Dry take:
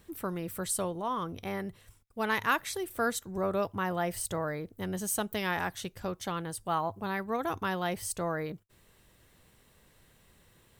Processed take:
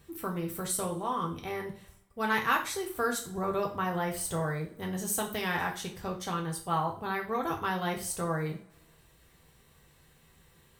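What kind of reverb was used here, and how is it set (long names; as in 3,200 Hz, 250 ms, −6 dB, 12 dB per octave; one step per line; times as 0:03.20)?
coupled-rooms reverb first 0.37 s, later 1.6 s, from −25 dB, DRR 0 dB
level −2 dB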